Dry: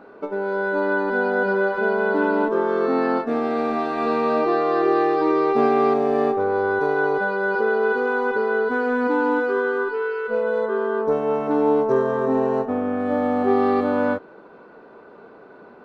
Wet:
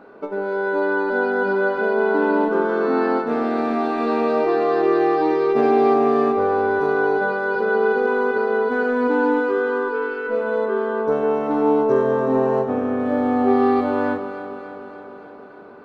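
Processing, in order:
delay that swaps between a low-pass and a high-pass 145 ms, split 1,100 Hz, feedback 81%, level −8.5 dB

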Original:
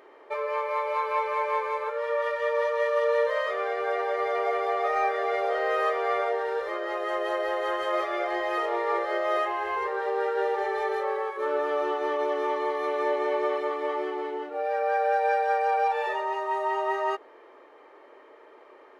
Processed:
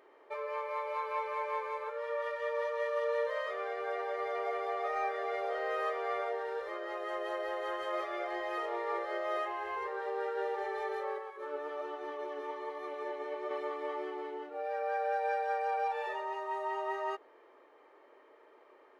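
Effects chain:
0:11.18–0:13.51: flanger 1.2 Hz, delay 2.5 ms, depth 5 ms, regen +70%
level −8.5 dB

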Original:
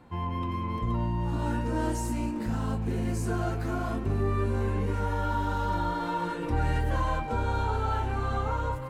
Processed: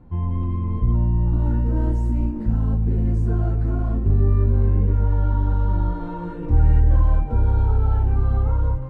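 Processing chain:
spectral tilt −4.5 dB per octave
level −5 dB

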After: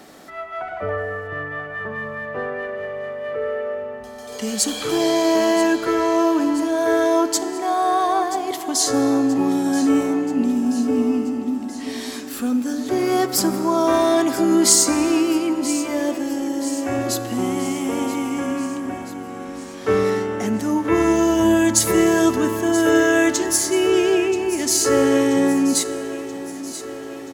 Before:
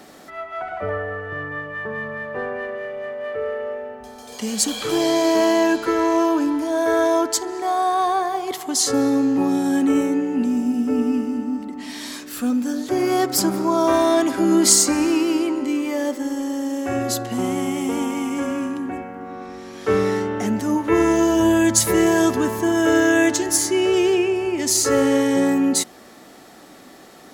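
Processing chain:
on a send: repeating echo 980 ms, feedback 58%, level −14 dB
on the sum: dense smooth reverb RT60 2.1 s, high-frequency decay 0.75×, DRR 14.5 dB

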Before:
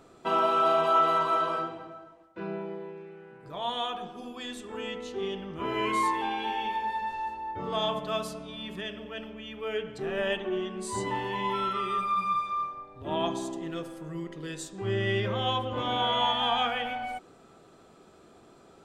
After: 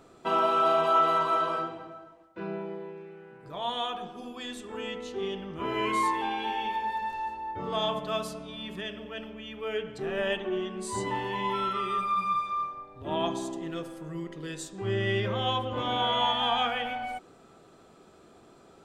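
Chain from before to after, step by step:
0:06.68–0:07.18: surface crackle 26 per second → 65 per second −44 dBFS

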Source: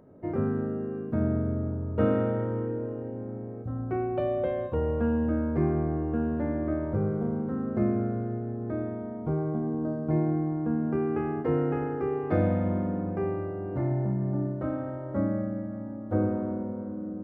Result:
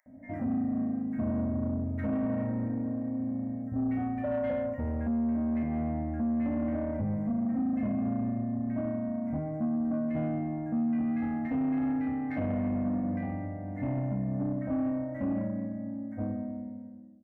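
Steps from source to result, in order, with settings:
fade-out on the ending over 2.29 s
drawn EQ curve 110 Hz 0 dB, 160 Hz −6 dB, 270 Hz +12 dB, 380 Hz −28 dB, 610 Hz +4 dB, 1,300 Hz −12 dB, 2,000 Hz +11 dB, 3,400 Hz −30 dB, 5,600 Hz +1 dB
multiband delay without the direct sound highs, lows 60 ms, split 1,300 Hz
brickwall limiter −20 dBFS, peak gain reduction 9.5 dB
soft clipping −24.5 dBFS, distortion −16 dB

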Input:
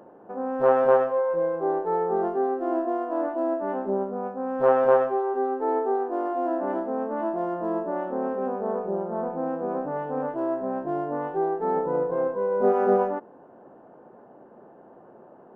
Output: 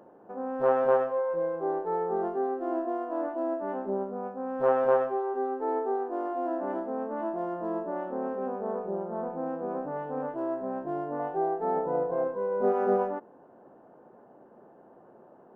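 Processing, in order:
0:11.19–0:12.24: parametric band 690 Hz +10.5 dB 0.26 octaves
level −4.5 dB

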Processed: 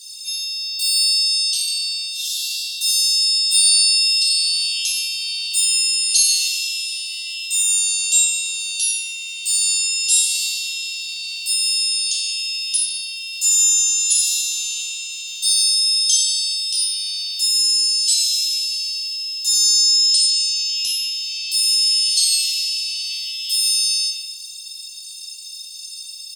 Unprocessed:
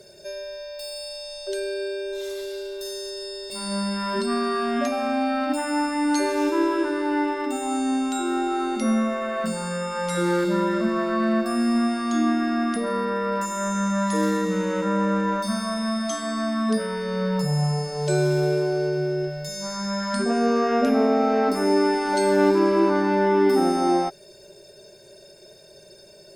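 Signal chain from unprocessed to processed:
Butterworth high-pass 2,700 Hz 96 dB per octave
parametric band 9,500 Hz +11.5 dB 2.6 octaves
far-end echo of a speakerphone 150 ms, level −6 dB
rectangular room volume 380 cubic metres, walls mixed, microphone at 3 metres
level +3.5 dB

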